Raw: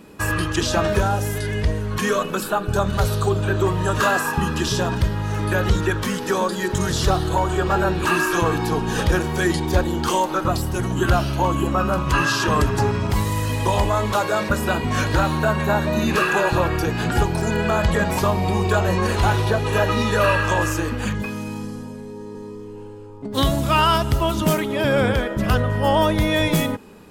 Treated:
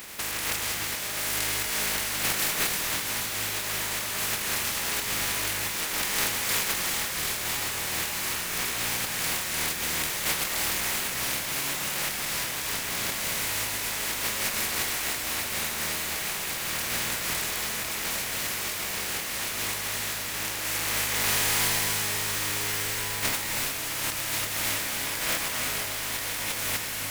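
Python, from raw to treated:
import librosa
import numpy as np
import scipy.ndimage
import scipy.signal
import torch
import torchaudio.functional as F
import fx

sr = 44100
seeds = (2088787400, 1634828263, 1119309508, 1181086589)

p1 = fx.spec_flatten(x, sr, power=0.12)
p2 = fx.peak_eq(p1, sr, hz=2100.0, db=5.5, octaves=0.7)
p3 = fx.over_compress(p2, sr, threshold_db=-28.0, ratio=-1.0)
p4 = p3 + fx.echo_diffused(p3, sr, ms=1341, feedback_pct=77, wet_db=-11, dry=0)
p5 = fx.rev_gated(p4, sr, seeds[0], gate_ms=380, shape='rising', drr_db=3.5)
y = p5 * 10.0 ** (-4.5 / 20.0)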